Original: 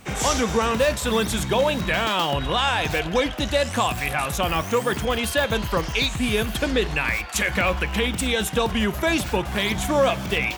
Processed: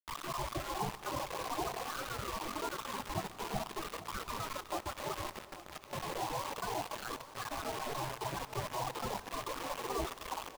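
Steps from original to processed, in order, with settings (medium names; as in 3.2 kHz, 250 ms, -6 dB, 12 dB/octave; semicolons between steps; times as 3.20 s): elliptic low-pass 970 Hz, stop band 60 dB; spectral gate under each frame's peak -25 dB weak; bass shelf 64 Hz +7.5 dB; compression 2.5:1, threshold -49 dBFS, peak gain reduction 9 dB; 5.35–5.93 s: feedback comb 640 Hz, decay 0.24 s, harmonics all, mix 60%; loudest bins only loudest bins 16; bit crusher 9-bit; delay 840 ms -15 dB; on a send at -15.5 dB: reverberation RT60 4.5 s, pre-delay 73 ms; on the sum: crackling interface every 0.15 s, samples 256, zero, from 0.74 s; trim +14 dB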